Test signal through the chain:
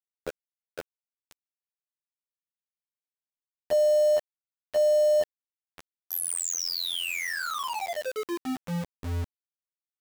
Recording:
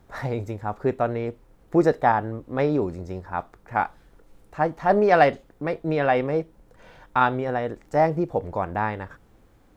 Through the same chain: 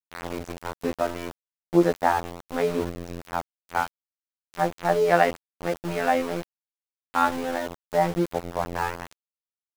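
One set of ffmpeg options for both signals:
-af "afftfilt=real='hypot(re,im)*cos(PI*b)':imag='0':win_size=2048:overlap=0.75,aeval=exprs='val(0)*gte(abs(val(0)),0.0251)':c=same,volume=1.5dB"

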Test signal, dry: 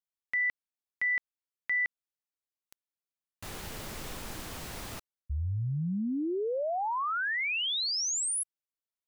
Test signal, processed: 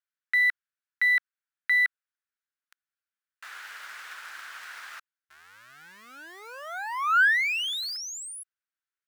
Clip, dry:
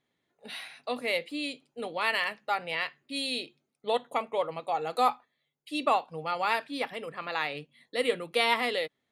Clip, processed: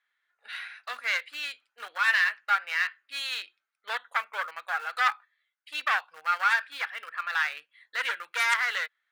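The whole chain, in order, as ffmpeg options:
-filter_complex "[0:a]lowpass=f=3.7k:p=1,asplit=2[a][b];[b]aeval=exprs='val(0)*gte(abs(val(0)),0.0237)':c=same,volume=-9.5dB[c];[a][c]amix=inputs=2:normalize=0,aeval=exprs='0.376*(cos(1*acos(clip(val(0)/0.376,-1,1)))-cos(1*PI/2))+0.133*(cos(3*acos(clip(val(0)/0.376,-1,1)))-cos(3*PI/2))+0.0841*(cos(5*acos(clip(val(0)/0.376,-1,1)))-cos(5*PI/2))+0.0376*(cos(6*acos(clip(val(0)/0.376,-1,1)))-cos(6*PI/2))':c=same,highpass=f=1.5k:t=q:w=4,volume=-1dB"

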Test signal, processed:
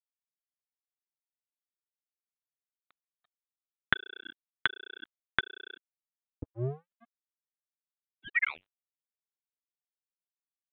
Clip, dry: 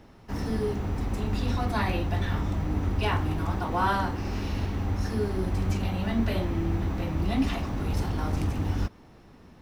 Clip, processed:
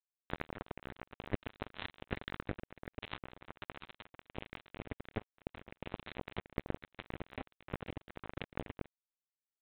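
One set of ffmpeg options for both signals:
-af "flanger=delay=6.2:depth=7.5:regen=36:speed=1.3:shape=triangular,acompressor=threshold=-38dB:ratio=6,equalizer=f=125:t=o:w=1:g=11,equalizer=f=250:t=o:w=1:g=4,equalizer=f=2k:t=o:w=1:g=11,aresample=8000,acrusher=bits=3:mix=0:aa=0.5,aresample=44100,volume=8.5dB"

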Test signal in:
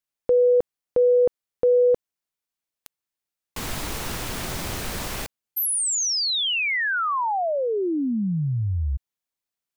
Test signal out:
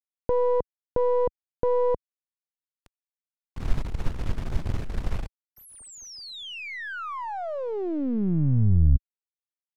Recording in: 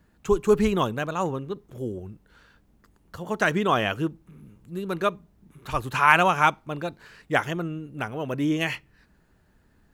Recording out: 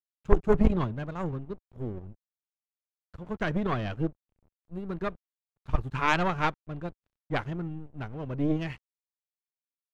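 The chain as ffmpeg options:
-af "aeval=exprs='sgn(val(0))*max(abs(val(0))-0.00891,0)':c=same,aemphasis=mode=reproduction:type=riaa,aeval=exprs='1.06*(cos(1*acos(clip(val(0)/1.06,-1,1)))-cos(1*PI/2))+0.168*(cos(3*acos(clip(val(0)/1.06,-1,1)))-cos(3*PI/2))+0.0299*(cos(4*acos(clip(val(0)/1.06,-1,1)))-cos(4*PI/2))+0.0376*(cos(5*acos(clip(val(0)/1.06,-1,1)))-cos(5*PI/2))+0.133*(cos(6*acos(clip(val(0)/1.06,-1,1)))-cos(6*PI/2))':c=same,volume=-5dB"

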